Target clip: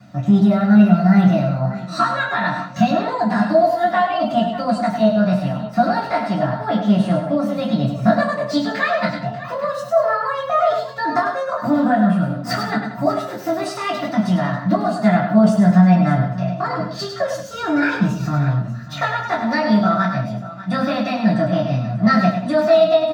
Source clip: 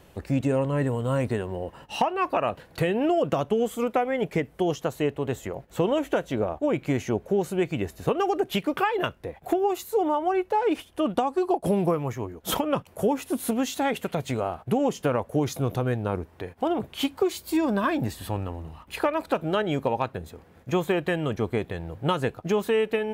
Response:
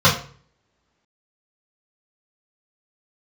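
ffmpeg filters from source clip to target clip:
-filter_complex "[0:a]asetrate=64194,aresample=44100,atempo=0.686977,aecho=1:1:101|182|592:0.447|0.178|0.168[a];[1:a]atrim=start_sample=2205,asetrate=57330,aresample=44100[b];[a][b]afir=irnorm=-1:irlink=0,volume=-16.5dB"

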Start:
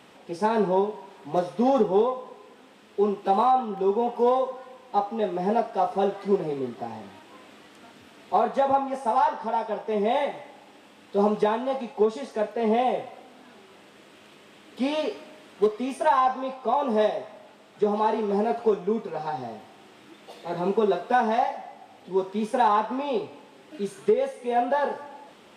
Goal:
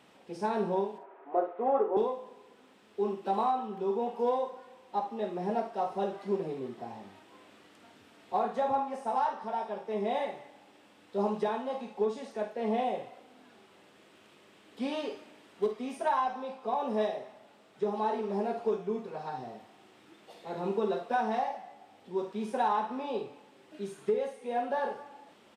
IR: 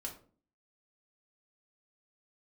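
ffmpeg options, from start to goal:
-filter_complex "[0:a]asettb=1/sr,asplit=3[a][b][c];[a]atrim=end=0.984[d];[b]atrim=start=0.98:end=1.97,asetpts=PTS-STARTPTS,afade=t=in:d=0.004:c=qsin,afade=t=out:st=0.986:d=0.004:c=qsin,highpass=f=330:w=0.5412,highpass=f=330:w=1.3066,equalizer=f=360:t=q:w=4:g=4,equalizer=f=670:t=q:w=4:g=7,equalizer=f=1.3k:t=q:w=4:g=5,lowpass=f=2.1k:w=0.5412,lowpass=f=2.1k:w=1.3066[e];[c]atrim=start=1.966[f];[d][e]acrossfade=d=0.004:c1=hsin:c2=qsin[g];[g][f]acrossfade=d=0.004:c1=qsin:c2=hsin,aecho=1:1:51|74:0.316|0.141,volume=-8dB"

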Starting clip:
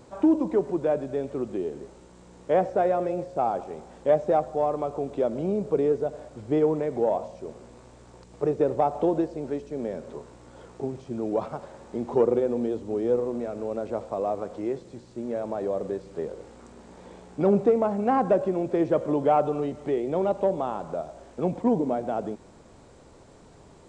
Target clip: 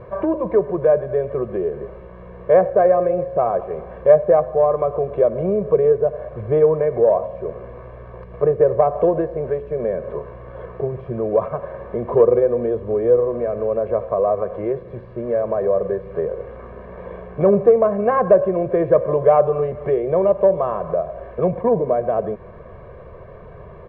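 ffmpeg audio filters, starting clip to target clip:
-filter_complex "[0:a]lowpass=f=2.1k:w=0.5412,lowpass=f=2.1k:w=1.3066,aecho=1:1:1.8:0.99,asplit=2[a][b];[b]acompressor=threshold=-33dB:ratio=6,volume=1dB[c];[a][c]amix=inputs=2:normalize=0,volume=3dB"

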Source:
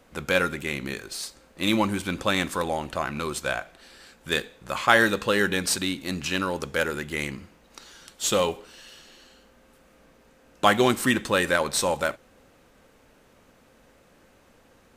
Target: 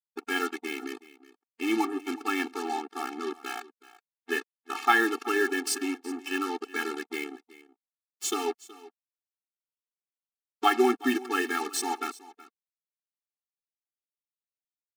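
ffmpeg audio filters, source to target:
-filter_complex "[0:a]bandreject=f=3.8k:w=5.6,afwtdn=0.0251,highpass=f=130:w=0.5412,highpass=f=130:w=1.3066,acrusher=bits=4:mix=0:aa=0.5,asplit=2[a][b];[b]aecho=0:1:373:0.112[c];[a][c]amix=inputs=2:normalize=0,afftfilt=real='re*eq(mod(floor(b*sr/1024/230),2),1)':imag='im*eq(mod(floor(b*sr/1024/230),2),1)':win_size=1024:overlap=0.75"

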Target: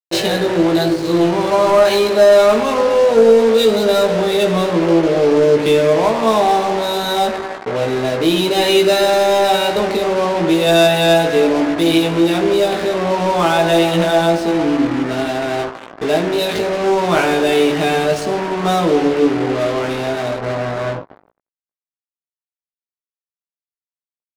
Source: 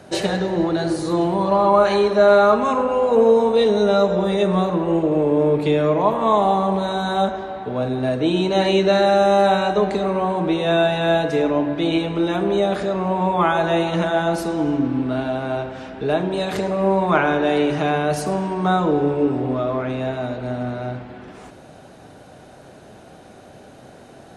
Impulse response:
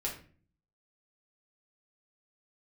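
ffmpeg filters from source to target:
-filter_complex "[0:a]aemphasis=mode=production:type=75kf,afftfilt=real='re*gte(hypot(re,im),0.02)':imag='im*gte(hypot(re,im),0.02)':win_size=1024:overlap=0.75,equalizer=f=1.2k:t=o:w=1.8:g=-11,acrusher=bits=4:mix=0:aa=0.5,asplit=2[a][b];[b]highpass=f=720:p=1,volume=15dB,asoftclip=type=tanh:threshold=-6.5dB[c];[a][c]amix=inputs=2:normalize=0,lowpass=f=2.1k:p=1,volume=-6dB,adynamicsmooth=sensitivity=4.5:basefreq=830,asplit=2[d][e];[e]adelay=18,volume=-3.5dB[f];[d][f]amix=inputs=2:normalize=0,volume=2.5dB"

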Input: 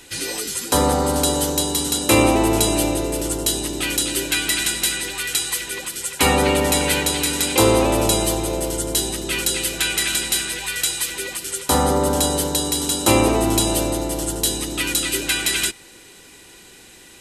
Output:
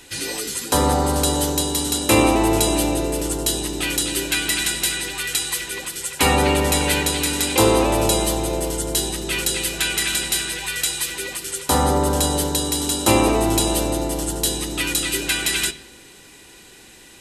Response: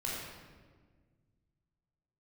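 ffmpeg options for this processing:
-filter_complex "[0:a]asplit=2[a][b];[1:a]atrim=start_sample=2205,asetrate=79380,aresample=44100,lowpass=7k[c];[b][c]afir=irnorm=-1:irlink=0,volume=-11dB[d];[a][d]amix=inputs=2:normalize=0,volume=-1dB"

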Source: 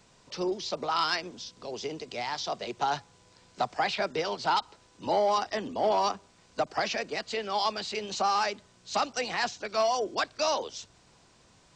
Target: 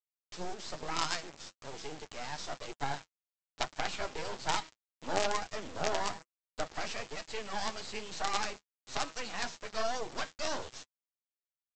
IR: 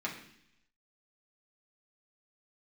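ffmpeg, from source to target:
-af "bandreject=f=160.4:t=h:w=4,bandreject=f=320.8:t=h:w=4,bandreject=f=481.2:t=h:w=4,bandreject=f=641.6:t=h:w=4,bandreject=f=802:t=h:w=4,bandreject=f=962.4:t=h:w=4,bandreject=f=1.1228k:t=h:w=4,bandreject=f=1.2832k:t=h:w=4,bandreject=f=1.4436k:t=h:w=4,bandreject=f=1.604k:t=h:w=4,bandreject=f=1.7644k:t=h:w=4,bandreject=f=1.9248k:t=h:w=4,bandreject=f=2.0852k:t=h:w=4,bandreject=f=2.2456k:t=h:w=4,bandreject=f=2.406k:t=h:w=4,bandreject=f=2.5664k:t=h:w=4,bandreject=f=2.7268k:t=h:w=4,bandreject=f=2.8872k:t=h:w=4,bandreject=f=3.0476k:t=h:w=4,bandreject=f=3.208k:t=h:w=4,bandreject=f=3.3684k:t=h:w=4,bandreject=f=3.5288k:t=h:w=4,bandreject=f=3.6892k:t=h:w=4,bandreject=f=3.8496k:t=h:w=4,bandreject=f=4.01k:t=h:w=4,bandreject=f=4.1704k:t=h:w=4,bandreject=f=4.3308k:t=h:w=4,bandreject=f=4.4912k:t=h:w=4,bandreject=f=4.6516k:t=h:w=4,bandreject=f=4.812k:t=h:w=4,bandreject=f=4.9724k:t=h:w=4,bandreject=f=5.1328k:t=h:w=4,bandreject=f=5.2932k:t=h:w=4,bandreject=f=5.4536k:t=h:w=4,bandreject=f=5.614k:t=h:w=4,aresample=16000,acrusher=bits=4:dc=4:mix=0:aa=0.000001,aresample=44100,flanger=delay=6.1:depth=6.3:regen=-34:speed=1.1:shape=sinusoidal"

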